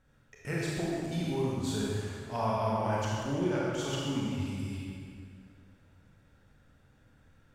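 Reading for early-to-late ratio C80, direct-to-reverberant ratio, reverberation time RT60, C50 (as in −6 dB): −1.0 dB, −5.5 dB, 2.3 s, −3.0 dB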